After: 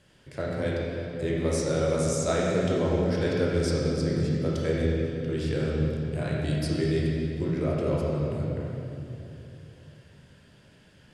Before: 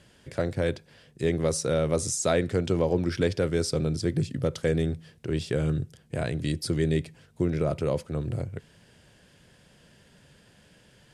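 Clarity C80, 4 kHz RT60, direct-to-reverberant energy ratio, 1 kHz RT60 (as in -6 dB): -0.5 dB, 2.2 s, -5.0 dB, 2.7 s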